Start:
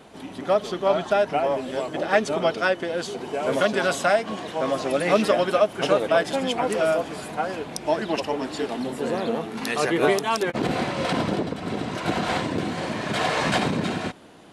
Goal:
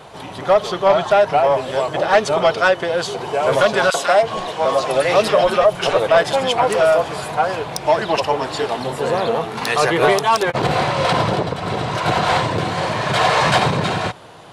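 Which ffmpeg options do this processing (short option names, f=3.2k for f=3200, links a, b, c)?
-filter_complex "[0:a]equalizer=f=125:t=o:w=1:g=8,equalizer=f=250:t=o:w=1:g=-11,equalizer=f=500:t=o:w=1:g=3,equalizer=f=1k:t=o:w=1:g=6,equalizer=f=4k:t=o:w=1:g=3,asoftclip=type=tanh:threshold=-11.5dB,asettb=1/sr,asplit=3[a][b][c];[a]atrim=end=3.904[d];[b]atrim=start=3.9:end=5.97,asetpts=PTS-STARTPTS,afade=t=in:d=0.004:c=qsin,afade=t=out:st=2.066:d=0.004:c=qsin,acrossover=split=190|1500[e][f][g];[f]adelay=40[h];[e]adelay=320[i];[i][h][g]amix=inputs=3:normalize=0,atrim=end_sample=91287[j];[c]atrim=start=5.966[k];[d][j]acrossfade=d=0.004:c1=hsin:c2=qsin[l];[l][k]acrossfade=d=0.004:c1=qsin:c2=hsin,volume=6dB"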